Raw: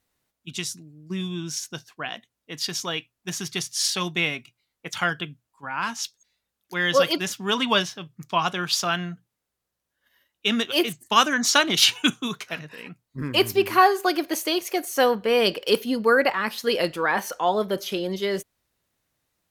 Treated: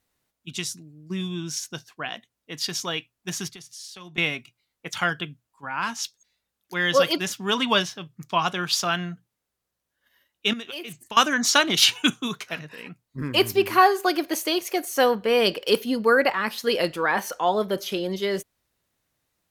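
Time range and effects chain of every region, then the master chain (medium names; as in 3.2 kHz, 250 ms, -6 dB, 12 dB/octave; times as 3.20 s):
3.49–4.18 s: high-pass 53 Hz + compression, threshold -39 dBFS + three bands expanded up and down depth 70%
10.53–11.17 s: peaking EQ 2.5 kHz +5.5 dB 0.3 oct + compression 12:1, threshold -31 dBFS
whole clip: none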